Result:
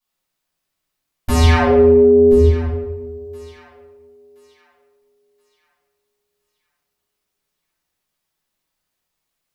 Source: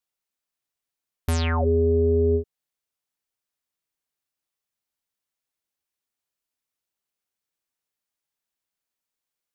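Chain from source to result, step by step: 1.43–2.32 HPF 250 Hz 6 dB/oct; on a send: thinning echo 1.024 s, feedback 37%, high-pass 710 Hz, level -17 dB; on the sum: shoebox room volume 420 m³, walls mixed, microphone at 7.9 m; gain -4.5 dB

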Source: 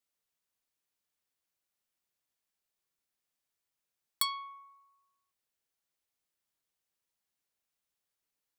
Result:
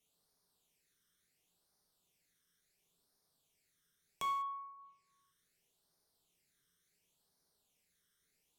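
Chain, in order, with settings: phaser stages 12, 0.71 Hz, lowest notch 780–2700 Hz; treble ducked by the level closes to 930 Hz, closed at -53.5 dBFS; non-linear reverb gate 0.22 s falling, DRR 2 dB; gain +9.5 dB

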